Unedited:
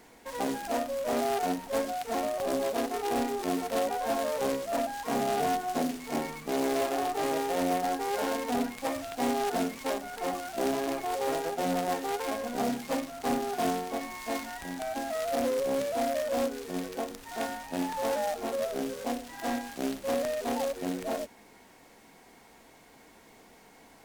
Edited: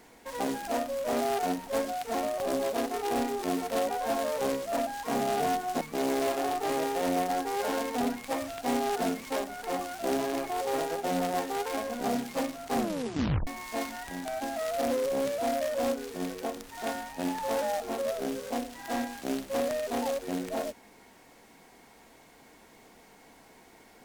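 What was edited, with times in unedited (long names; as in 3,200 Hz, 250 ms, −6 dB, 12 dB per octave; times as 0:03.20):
0:05.81–0:06.35: remove
0:13.29: tape stop 0.72 s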